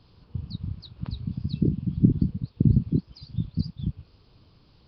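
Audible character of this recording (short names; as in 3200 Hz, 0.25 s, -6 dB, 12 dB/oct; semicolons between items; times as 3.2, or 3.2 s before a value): Nellymoser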